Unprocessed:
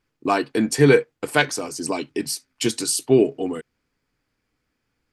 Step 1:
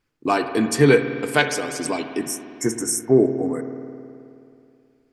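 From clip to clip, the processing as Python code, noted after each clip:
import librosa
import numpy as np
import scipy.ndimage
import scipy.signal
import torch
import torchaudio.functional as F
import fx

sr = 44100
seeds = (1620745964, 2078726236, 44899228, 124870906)

y = fx.spec_erase(x, sr, start_s=2.19, length_s=1.47, low_hz=2200.0, high_hz=5300.0)
y = fx.rev_spring(y, sr, rt60_s=2.6, pass_ms=(53,), chirp_ms=60, drr_db=7.5)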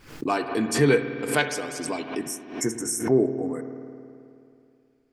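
y = fx.pre_swell(x, sr, db_per_s=110.0)
y = y * librosa.db_to_amplitude(-5.0)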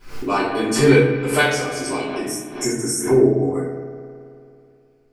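y = fx.room_shoebox(x, sr, seeds[0], volume_m3=110.0, walls='mixed', distance_m=3.0)
y = y * librosa.db_to_amplitude(-5.0)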